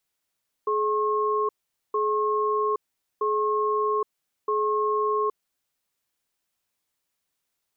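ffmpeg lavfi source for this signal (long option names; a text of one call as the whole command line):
ffmpeg -f lavfi -i "aevalsrc='0.0631*(sin(2*PI*424*t)+sin(2*PI*1080*t))*clip(min(mod(t,1.27),0.82-mod(t,1.27))/0.005,0,1)':duration=4.72:sample_rate=44100" out.wav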